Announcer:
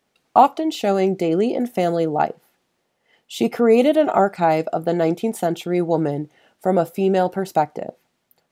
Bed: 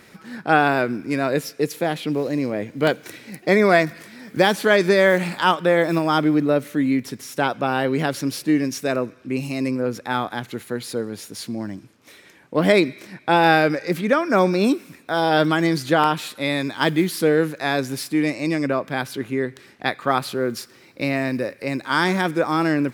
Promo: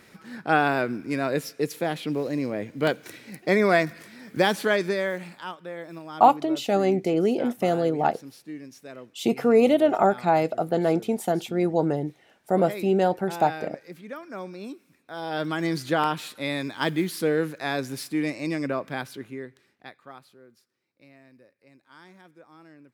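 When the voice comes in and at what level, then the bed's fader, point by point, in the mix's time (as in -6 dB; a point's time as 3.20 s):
5.85 s, -3.5 dB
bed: 4.60 s -4.5 dB
5.54 s -19.5 dB
14.86 s -19.5 dB
15.72 s -6 dB
18.93 s -6 dB
20.52 s -31 dB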